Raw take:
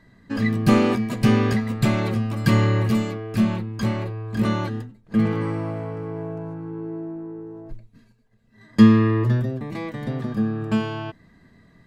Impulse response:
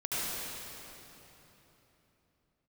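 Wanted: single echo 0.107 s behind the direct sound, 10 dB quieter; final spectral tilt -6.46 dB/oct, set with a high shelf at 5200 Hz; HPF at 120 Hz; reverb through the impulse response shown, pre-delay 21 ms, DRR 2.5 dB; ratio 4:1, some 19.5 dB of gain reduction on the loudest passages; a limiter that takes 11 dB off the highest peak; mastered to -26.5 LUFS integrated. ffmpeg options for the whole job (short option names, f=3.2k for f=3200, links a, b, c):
-filter_complex "[0:a]highpass=120,highshelf=f=5.2k:g=-4,acompressor=threshold=-32dB:ratio=4,alimiter=level_in=5dB:limit=-24dB:level=0:latency=1,volume=-5dB,aecho=1:1:107:0.316,asplit=2[a][b];[1:a]atrim=start_sample=2205,adelay=21[c];[b][c]afir=irnorm=-1:irlink=0,volume=-10.5dB[d];[a][d]amix=inputs=2:normalize=0,volume=9dB"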